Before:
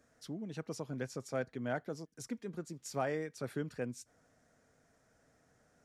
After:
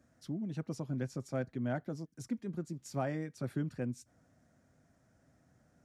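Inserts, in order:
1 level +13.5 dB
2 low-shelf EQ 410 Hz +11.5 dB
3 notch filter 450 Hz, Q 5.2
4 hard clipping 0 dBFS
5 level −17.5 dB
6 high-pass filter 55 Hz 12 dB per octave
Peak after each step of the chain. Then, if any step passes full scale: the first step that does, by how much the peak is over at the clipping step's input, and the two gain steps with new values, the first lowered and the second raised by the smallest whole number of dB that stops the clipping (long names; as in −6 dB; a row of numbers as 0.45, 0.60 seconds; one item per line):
−8.0, −4.0, −4.5, −4.5, −22.0, −23.0 dBFS
no step passes full scale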